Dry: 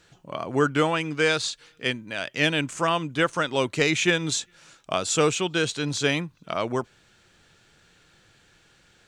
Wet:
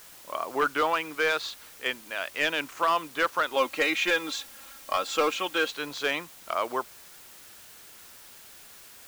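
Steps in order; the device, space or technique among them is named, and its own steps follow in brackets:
drive-through speaker (band-pass filter 450–3,700 Hz; parametric band 1,100 Hz +5 dB 0.77 octaves; hard clipping −15 dBFS, distortion −16 dB; white noise bed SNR 19 dB)
0:03.56–0:05.71: comb filter 3.7 ms, depth 69%
level −2 dB

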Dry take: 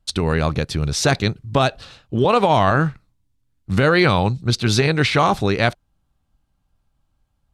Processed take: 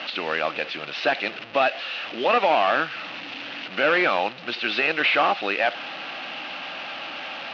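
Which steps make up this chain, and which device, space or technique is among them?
digital answering machine (band-pass filter 320–3,300 Hz; linear delta modulator 32 kbit/s, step −28.5 dBFS; loudspeaker in its box 390–4,100 Hz, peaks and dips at 420 Hz −10 dB, 990 Hz −7 dB, 2,700 Hz +9 dB)
level +1.5 dB

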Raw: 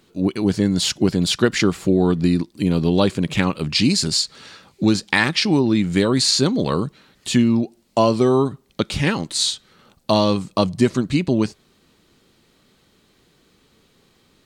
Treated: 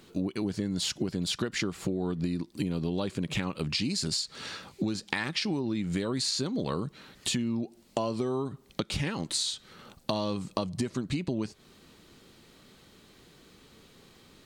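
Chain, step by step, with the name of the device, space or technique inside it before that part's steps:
serial compression, leveller first (downward compressor 2 to 1, threshold −22 dBFS, peak gain reduction 7 dB; downward compressor 4 to 1, threshold −31 dBFS, peak gain reduction 13 dB)
level +2 dB

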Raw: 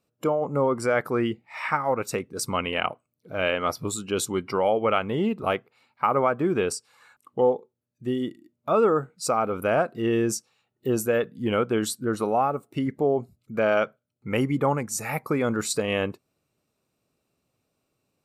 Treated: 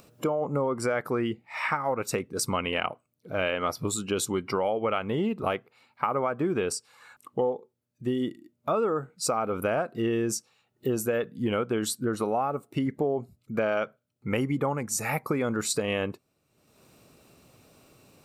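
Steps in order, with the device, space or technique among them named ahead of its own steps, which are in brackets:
upward and downward compression (upward compression, threshold −44 dBFS; downward compressor 4 to 1, threshold −26 dBFS, peak gain reduction 9 dB)
level +2 dB

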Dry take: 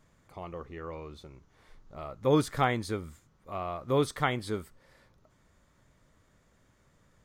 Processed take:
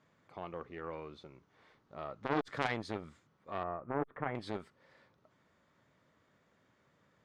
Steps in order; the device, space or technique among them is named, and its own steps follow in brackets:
valve radio (band-pass filter 120–4,200 Hz; tube saturation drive 22 dB, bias 0.7; saturating transformer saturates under 1,000 Hz)
0:03.63–0:04.35: Bessel low-pass filter 1,300 Hz, order 8
low-shelf EQ 190 Hz −4.5 dB
level +2 dB

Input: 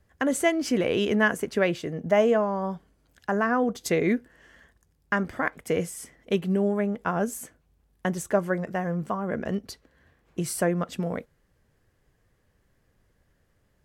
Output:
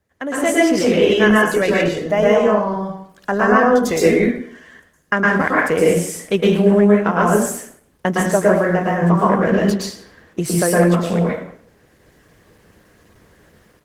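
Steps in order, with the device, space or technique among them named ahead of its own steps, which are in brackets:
far-field microphone of a smart speaker (convolution reverb RT60 0.60 s, pre-delay 108 ms, DRR −5 dB; high-pass filter 160 Hz 6 dB per octave; automatic gain control gain up to 16.5 dB; level −1 dB; Opus 16 kbit/s 48,000 Hz)

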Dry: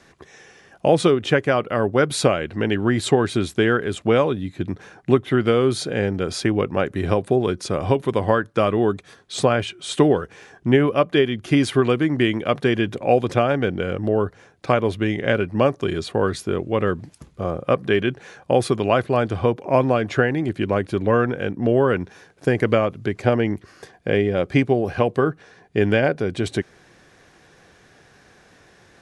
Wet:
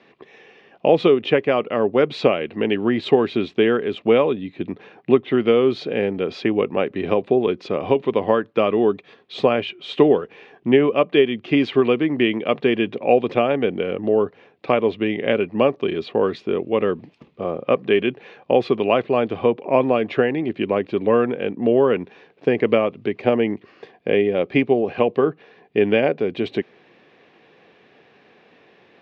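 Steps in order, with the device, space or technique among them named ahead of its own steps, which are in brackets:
kitchen radio (loudspeaker in its box 200–3,700 Hz, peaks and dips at 230 Hz +3 dB, 440 Hz +4 dB, 1,500 Hz −8 dB, 2,600 Hz +5 dB)

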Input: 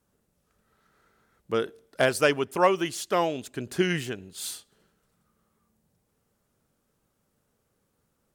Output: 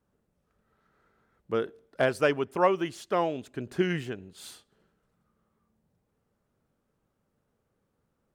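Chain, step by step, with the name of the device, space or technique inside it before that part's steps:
through cloth (high-shelf EQ 3,600 Hz −13 dB)
level −1.5 dB

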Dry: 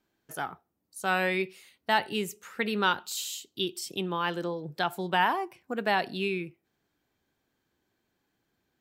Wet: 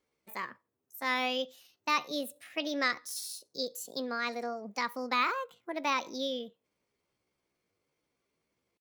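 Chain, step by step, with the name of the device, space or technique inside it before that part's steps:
chipmunk voice (pitch shifter +5.5 semitones)
level −4 dB

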